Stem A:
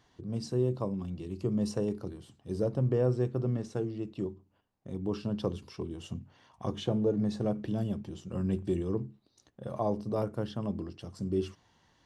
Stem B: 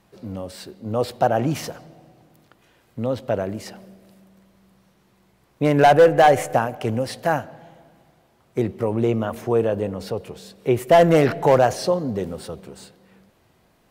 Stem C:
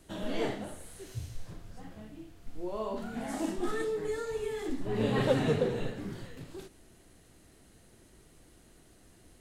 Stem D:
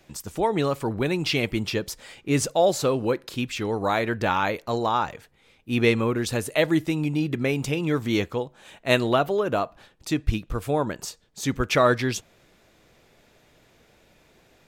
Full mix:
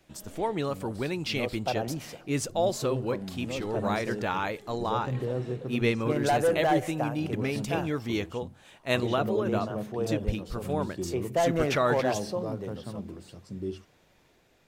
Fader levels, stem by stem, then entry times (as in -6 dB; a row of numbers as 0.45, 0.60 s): -4.0, -12.0, -15.0, -6.5 dB; 2.30, 0.45, 0.00, 0.00 s